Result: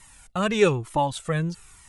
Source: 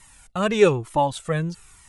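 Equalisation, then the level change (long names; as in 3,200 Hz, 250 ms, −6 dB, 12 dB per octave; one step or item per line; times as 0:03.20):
dynamic equaliser 530 Hz, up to −4 dB, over −26 dBFS, Q 0.73
0.0 dB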